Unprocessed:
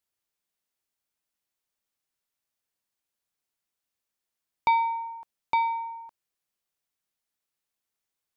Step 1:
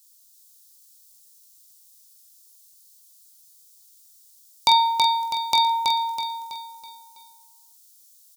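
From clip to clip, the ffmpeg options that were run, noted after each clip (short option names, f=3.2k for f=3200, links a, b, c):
-filter_complex "[0:a]asplit=2[a][b];[b]aecho=0:1:21|46:0.398|0.422[c];[a][c]amix=inputs=2:normalize=0,aexciter=amount=12.1:drive=7.4:freq=3.6k,asplit=2[d][e];[e]aecho=0:1:326|652|978|1304|1630:0.631|0.271|0.117|0.0502|0.0216[f];[d][f]amix=inputs=2:normalize=0,volume=2.5dB"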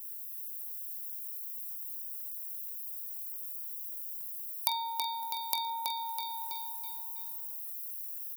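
-af "highpass=f=380:p=1,acompressor=threshold=-32dB:ratio=2.5,aexciter=amount=5.5:drive=7.7:freq=10k,volume=-5dB"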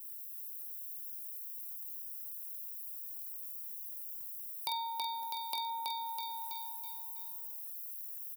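-filter_complex "[0:a]equalizer=f=1.4k:w=3.8:g=-4,asplit=2[a][b];[b]adelay=48,volume=-14dB[c];[a][c]amix=inputs=2:normalize=0,acrossover=split=570|3900[d][e][f];[f]asoftclip=type=tanh:threshold=-19dB[g];[d][e][g]amix=inputs=3:normalize=0,volume=-3.5dB"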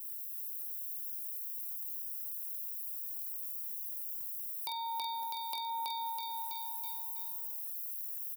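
-af "alimiter=level_in=3.5dB:limit=-24dB:level=0:latency=1:release=262,volume=-3.5dB,volume=3.5dB"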